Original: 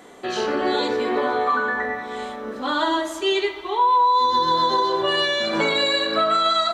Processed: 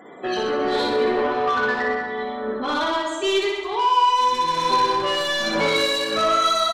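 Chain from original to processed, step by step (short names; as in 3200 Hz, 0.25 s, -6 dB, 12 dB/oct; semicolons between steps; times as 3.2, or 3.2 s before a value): loudest bins only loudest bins 64; soft clip -19.5 dBFS, distortion -12 dB; tremolo triangle 1.3 Hz, depth 35%; on a send: reverse bouncing-ball echo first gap 60 ms, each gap 1.1×, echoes 5; on the sum: gain +3 dB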